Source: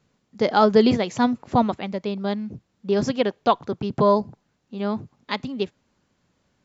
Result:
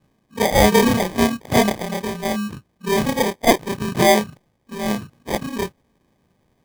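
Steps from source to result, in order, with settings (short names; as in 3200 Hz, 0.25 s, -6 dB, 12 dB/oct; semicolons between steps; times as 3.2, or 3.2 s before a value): short-time reversal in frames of 76 ms; dynamic EQ 330 Hz, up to -4 dB, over -36 dBFS, Q 1.4; sample-and-hold 32×; gain +7.5 dB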